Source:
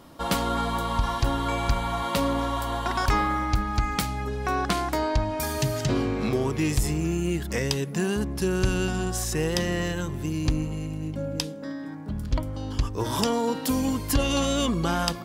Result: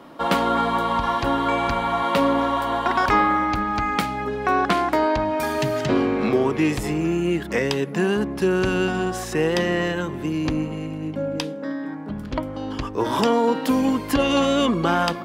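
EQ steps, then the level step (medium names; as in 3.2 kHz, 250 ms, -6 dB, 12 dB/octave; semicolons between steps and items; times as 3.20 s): three-band isolator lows -16 dB, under 180 Hz, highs -13 dB, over 3.3 kHz; +7.0 dB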